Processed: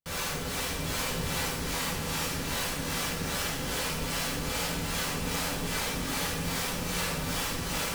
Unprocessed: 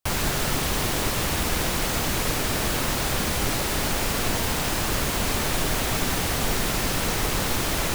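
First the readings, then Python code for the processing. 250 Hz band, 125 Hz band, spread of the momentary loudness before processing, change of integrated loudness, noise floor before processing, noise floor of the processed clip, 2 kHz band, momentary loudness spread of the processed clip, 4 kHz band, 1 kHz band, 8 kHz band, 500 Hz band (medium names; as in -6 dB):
-6.0 dB, -7.0 dB, 0 LU, -6.5 dB, -26 dBFS, -34 dBFS, -5.5 dB, 1 LU, -5.0 dB, -7.0 dB, -6.0 dB, -7.0 dB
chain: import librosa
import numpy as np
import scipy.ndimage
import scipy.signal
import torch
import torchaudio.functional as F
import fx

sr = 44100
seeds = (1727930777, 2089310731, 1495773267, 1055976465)

y = fx.high_shelf(x, sr, hz=10000.0, db=-8.0)
y = 10.0 ** (-25.5 / 20.0) * (np.abs((y / 10.0 ** (-25.5 / 20.0) + 3.0) % 4.0 - 2.0) - 1.0)
y = fx.comb_fb(y, sr, f0_hz=480.0, decay_s=0.62, harmonics='all', damping=0.0, mix_pct=70)
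y = fx.vibrato(y, sr, rate_hz=0.81, depth_cents=40.0)
y = fx.harmonic_tremolo(y, sr, hz=2.5, depth_pct=70, crossover_hz=460.0)
y = y + 10.0 ** (-6.0 / 20.0) * np.pad(y, (int(730 * sr / 1000.0), 0))[:len(y)]
y = fx.rev_fdn(y, sr, rt60_s=1.0, lf_ratio=1.3, hf_ratio=0.85, size_ms=35.0, drr_db=-4.0)
y = y * librosa.db_to_amplitude(5.0)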